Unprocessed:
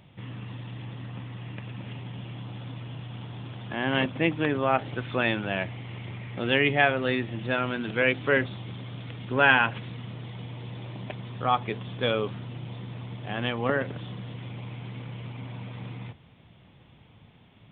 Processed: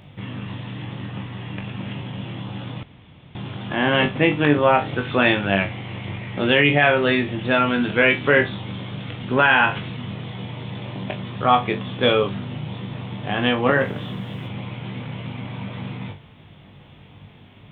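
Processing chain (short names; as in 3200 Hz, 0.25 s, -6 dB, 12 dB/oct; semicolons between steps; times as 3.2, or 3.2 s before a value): 13.74–14.46 added noise pink -70 dBFS; flutter echo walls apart 3.5 m, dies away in 0.21 s; 2.83–3.35 room tone; maximiser +10.5 dB; gain -3 dB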